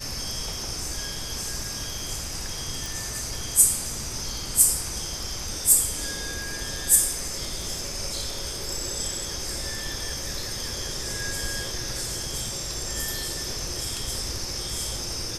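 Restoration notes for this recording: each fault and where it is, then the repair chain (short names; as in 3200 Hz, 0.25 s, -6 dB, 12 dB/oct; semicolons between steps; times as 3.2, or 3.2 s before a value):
2.86 pop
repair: de-click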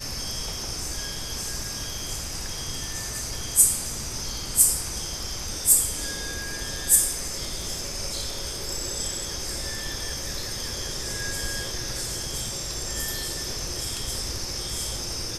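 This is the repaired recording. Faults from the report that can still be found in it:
none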